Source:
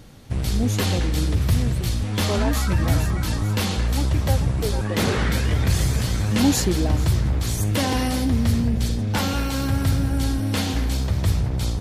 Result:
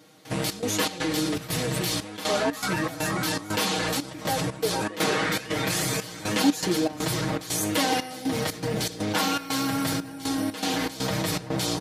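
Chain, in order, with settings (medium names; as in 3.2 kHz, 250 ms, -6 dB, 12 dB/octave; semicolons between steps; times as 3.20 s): high-pass 280 Hz 12 dB/octave; comb 6.4 ms, depth 89%; in parallel at 0 dB: compressor with a negative ratio -33 dBFS, ratio -1; on the sum: flange 0.96 Hz, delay 9.9 ms, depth 1.1 ms, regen -82%; trance gate "..xx.xx.xxx.xxxx" 120 bpm -12 dB; trim +1.5 dB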